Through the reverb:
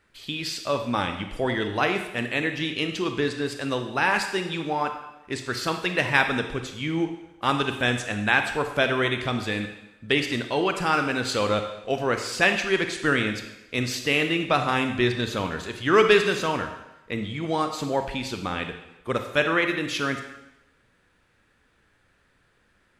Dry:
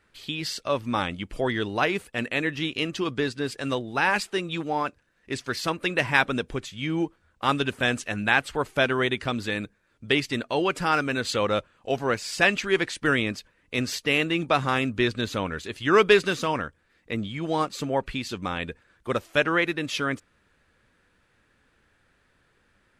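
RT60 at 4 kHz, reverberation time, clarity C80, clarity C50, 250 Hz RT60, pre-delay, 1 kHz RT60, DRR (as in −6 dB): 0.90 s, 0.95 s, 9.5 dB, 7.5 dB, 0.90 s, 27 ms, 0.95 s, 6.0 dB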